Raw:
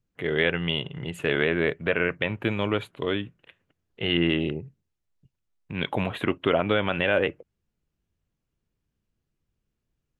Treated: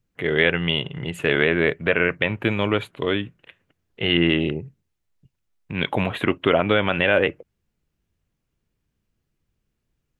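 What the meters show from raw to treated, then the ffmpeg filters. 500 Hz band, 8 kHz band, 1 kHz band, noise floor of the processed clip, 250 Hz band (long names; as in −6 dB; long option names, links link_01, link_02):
+4.0 dB, can't be measured, +4.5 dB, −77 dBFS, +4.0 dB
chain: -af "equalizer=frequency=2100:width_type=o:width=0.77:gain=2,volume=4dB"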